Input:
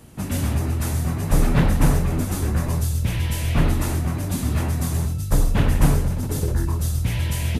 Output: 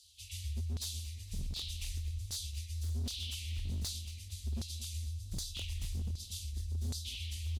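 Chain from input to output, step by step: inverse Chebyshev band-stop 170–1600 Hz, stop band 50 dB; resonant low shelf 130 Hz +13 dB, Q 3; LFO band-pass saw down 1.3 Hz 930–4500 Hz; wavefolder -37 dBFS; on a send: feedback delay 228 ms, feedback 52%, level -17.5 dB; on the sum: trim +5.5 dB

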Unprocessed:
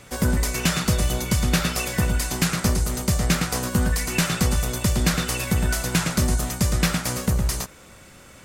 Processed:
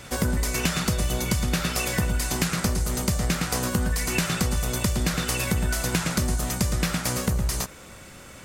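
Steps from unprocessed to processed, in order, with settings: compression 4:1, threshold -24 dBFS, peak gain reduction 8 dB; reverse echo 716 ms -20.5 dB; trim +2.5 dB

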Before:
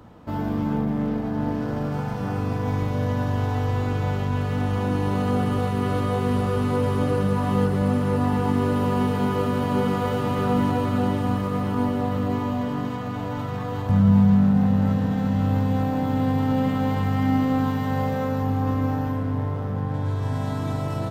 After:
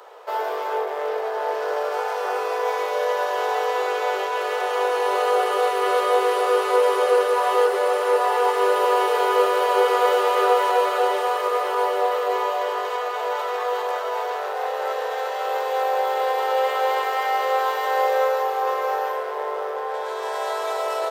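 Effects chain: steep high-pass 390 Hz 96 dB/octave; trim +8.5 dB

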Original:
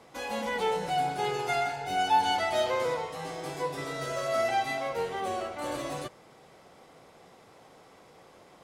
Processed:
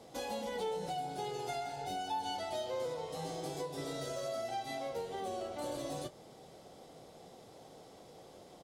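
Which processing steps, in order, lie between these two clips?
high-order bell 1.6 kHz -9 dB; compression 4:1, threshold -38 dBFS, peak gain reduction 13 dB; doubling 25 ms -13 dB; trim +1 dB

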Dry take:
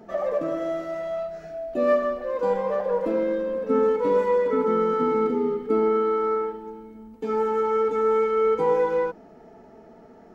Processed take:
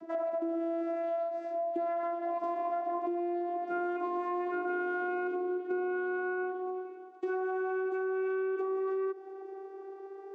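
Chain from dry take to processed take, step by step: vocoder on a note that slides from E4, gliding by +3 st; peak limiter -22 dBFS, peak gain reduction 10.5 dB; compression 5:1, threshold -33 dBFS, peak gain reduction 8 dB; on a send: tape echo 466 ms, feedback 66%, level -23.5 dB, low-pass 2.5 kHz; on the sum: trim +2 dB

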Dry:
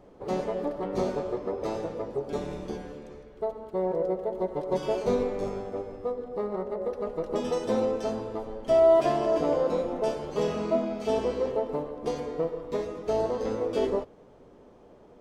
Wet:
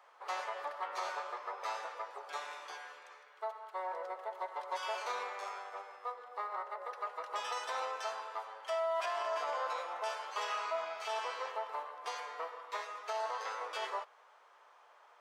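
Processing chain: high-pass 1.1 kHz 24 dB/octave; treble shelf 2.1 kHz -12 dB; peak limiter -37.5 dBFS, peak gain reduction 9 dB; trim +10 dB

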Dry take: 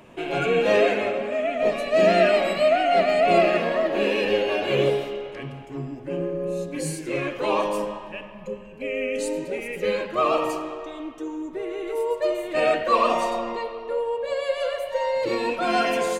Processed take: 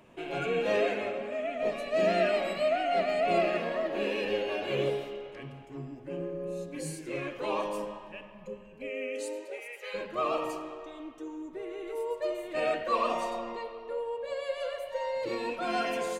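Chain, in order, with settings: 8.89–9.93 s: high-pass 190 Hz -> 750 Hz 24 dB/octave; trim -8.5 dB

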